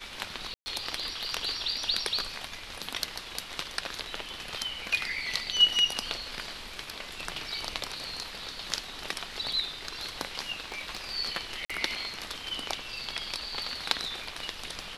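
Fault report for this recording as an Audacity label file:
0.540000	0.660000	dropout 120 ms
10.720000	11.110000	clipped -27 dBFS
11.650000	11.700000	dropout 46 ms

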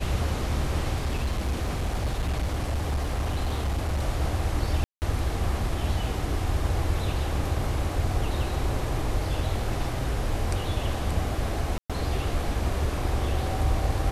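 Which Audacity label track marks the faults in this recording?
1.050000	4.020000	clipped -22.5 dBFS
4.840000	5.020000	dropout 179 ms
11.780000	11.900000	dropout 116 ms

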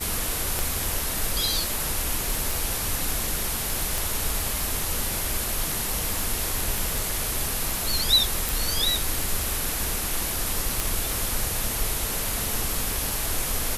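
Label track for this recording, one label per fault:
0.590000	0.590000	pop
2.510000	2.510000	pop
3.980000	3.980000	pop
6.780000	6.780000	pop
8.490000	8.490000	pop
10.800000	10.800000	pop

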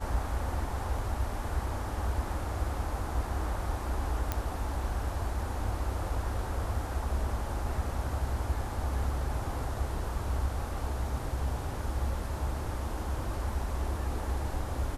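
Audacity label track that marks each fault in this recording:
4.320000	4.320000	pop -15 dBFS

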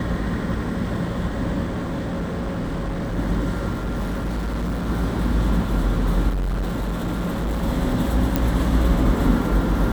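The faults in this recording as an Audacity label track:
1.660000	3.190000	clipped -22 dBFS
3.720000	4.880000	clipped -21.5 dBFS
6.280000	7.640000	clipped -20.5 dBFS
8.360000	8.360000	pop -6 dBFS

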